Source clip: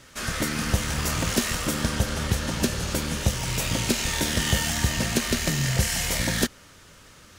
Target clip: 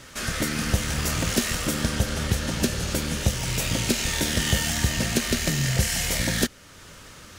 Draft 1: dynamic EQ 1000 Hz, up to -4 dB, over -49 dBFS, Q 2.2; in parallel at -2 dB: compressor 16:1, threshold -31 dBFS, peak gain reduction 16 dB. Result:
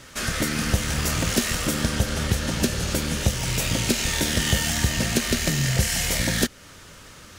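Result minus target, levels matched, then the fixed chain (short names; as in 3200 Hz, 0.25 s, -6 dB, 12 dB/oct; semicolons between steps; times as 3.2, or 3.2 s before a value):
compressor: peak gain reduction -10.5 dB
dynamic EQ 1000 Hz, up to -4 dB, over -49 dBFS, Q 2.2; in parallel at -2 dB: compressor 16:1, threshold -42 dBFS, peak gain reduction 26 dB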